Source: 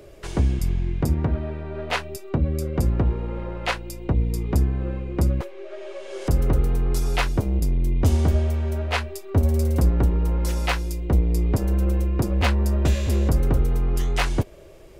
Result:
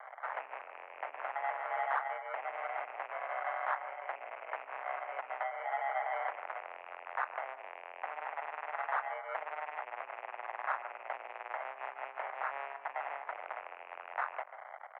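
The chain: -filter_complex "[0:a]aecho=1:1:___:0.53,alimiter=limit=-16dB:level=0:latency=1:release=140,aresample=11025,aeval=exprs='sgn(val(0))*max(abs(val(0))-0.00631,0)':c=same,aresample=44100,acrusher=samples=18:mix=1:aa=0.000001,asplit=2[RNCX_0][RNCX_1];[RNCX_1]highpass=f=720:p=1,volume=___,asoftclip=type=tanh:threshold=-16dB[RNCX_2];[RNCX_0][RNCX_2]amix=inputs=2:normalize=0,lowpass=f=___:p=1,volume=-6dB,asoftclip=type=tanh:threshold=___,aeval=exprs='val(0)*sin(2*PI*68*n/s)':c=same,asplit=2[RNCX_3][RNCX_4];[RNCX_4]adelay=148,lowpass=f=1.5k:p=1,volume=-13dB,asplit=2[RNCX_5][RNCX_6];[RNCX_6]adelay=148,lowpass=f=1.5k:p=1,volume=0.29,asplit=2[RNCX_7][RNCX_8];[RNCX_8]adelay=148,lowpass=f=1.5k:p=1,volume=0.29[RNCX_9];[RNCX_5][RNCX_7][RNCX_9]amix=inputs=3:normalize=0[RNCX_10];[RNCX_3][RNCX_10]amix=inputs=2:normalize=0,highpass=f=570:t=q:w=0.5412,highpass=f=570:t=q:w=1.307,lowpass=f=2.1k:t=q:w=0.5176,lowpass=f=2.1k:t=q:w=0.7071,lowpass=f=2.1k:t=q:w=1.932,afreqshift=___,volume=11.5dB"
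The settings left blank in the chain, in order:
1.8, 6dB, 1.5k, -35dB, 140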